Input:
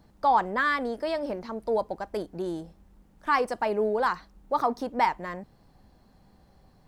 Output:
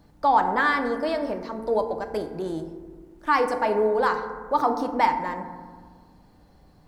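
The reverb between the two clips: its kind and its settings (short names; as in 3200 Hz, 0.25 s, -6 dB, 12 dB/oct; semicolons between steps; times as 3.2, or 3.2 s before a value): FDN reverb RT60 1.6 s, low-frequency decay 1.45×, high-frequency decay 0.35×, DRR 6 dB; gain +2 dB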